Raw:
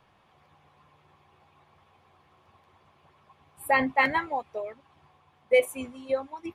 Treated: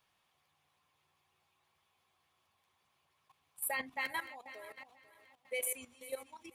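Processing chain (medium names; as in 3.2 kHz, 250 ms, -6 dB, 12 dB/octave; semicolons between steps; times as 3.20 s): backward echo that repeats 245 ms, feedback 59%, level -13 dB; pre-emphasis filter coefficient 0.9; level held to a coarse grid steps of 14 dB; trim +6.5 dB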